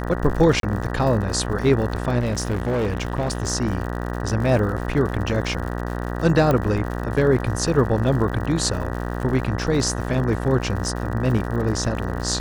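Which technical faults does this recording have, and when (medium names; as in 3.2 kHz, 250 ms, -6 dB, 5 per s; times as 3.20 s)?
buzz 60 Hz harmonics 32 -27 dBFS
crackle 100 per s -30 dBFS
0.60–0.63 s: dropout 32 ms
2.19–3.46 s: clipped -18.5 dBFS
6.51 s: pop -9 dBFS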